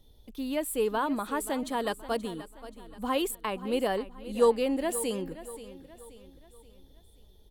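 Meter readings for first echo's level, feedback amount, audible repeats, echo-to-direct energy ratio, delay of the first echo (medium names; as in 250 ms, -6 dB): -15.0 dB, 44%, 3, -14.0 dB, 529 ms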